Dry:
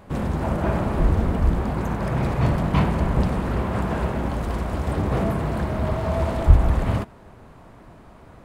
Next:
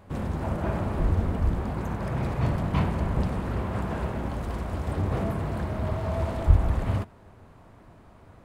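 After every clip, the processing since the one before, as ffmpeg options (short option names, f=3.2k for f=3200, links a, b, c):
-af "equalizer=f=95:w=6.2:g=8,volume=-6dB"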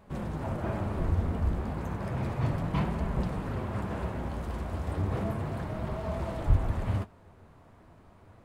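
-af "flanger=delay=4.4:depth=9.5:regen=-42:speed=0.33:shape=triangular"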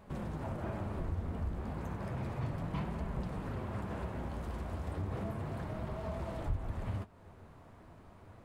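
-af "acompressor=threshold=-40dB:ratio=2"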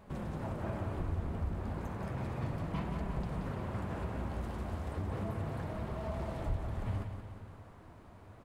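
-af "aecho=1:1:178|356|534|712|890|1068|1246:0.422|0.245|0.142|0.0823|0.0477|0.0277|0.0161"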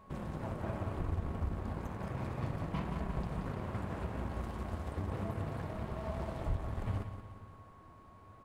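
-af "aeval=exprs='val(0)+0.00178*sin(2*PI*1100*n/s)':c=same,aeval=exprs='0.0631*(cos(1*acos(clip(val(0)/0.0631,-1,1)))-cos(1*PI/2))+0.00316*(cos(7*acos(clip(val(0)/0.0631,-1,1)))-cos(7*PI/2))':c=same"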